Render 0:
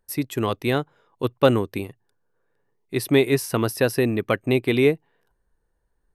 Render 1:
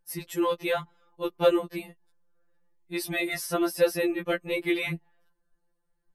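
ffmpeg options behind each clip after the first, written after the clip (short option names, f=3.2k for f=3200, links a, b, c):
-af "bandreject=f=374.1:t=h:w=4,bandreject=f=748.2:t=h:w=4,bandreject=f=1.1223k:t=h:w=4,bandreject=f=1.4964k:t=h:w=4,afftfilt=real='re*2.83*eq(mod(b,8),0)':imag='im*2.83*eq(mod(b,8),0)':win_size=2048:overlap=0.75,volume=-1.5dB"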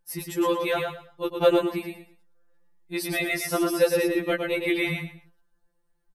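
-af "aecho=1:1:113|226|339:0.596|0.137|0.0315,volume=1.5dB"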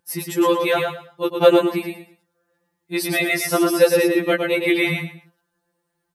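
-af "highpass=120,volume=6.5dB"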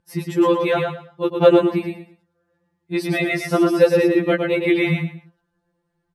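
-af "aemphasis=mode=reproduction:type=bsi,volume=-1dB"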